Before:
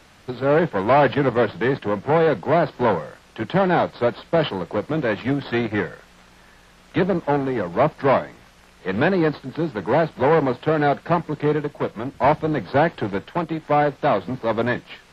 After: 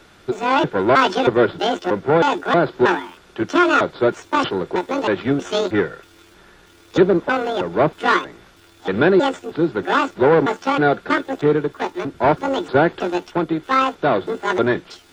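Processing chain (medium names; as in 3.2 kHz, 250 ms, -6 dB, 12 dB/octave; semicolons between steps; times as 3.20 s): pitch shift switched off and on +10 st, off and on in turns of 317 ms; small resonant body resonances 370/1400/3500 Hz, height 10 dB, ringing for 30 ms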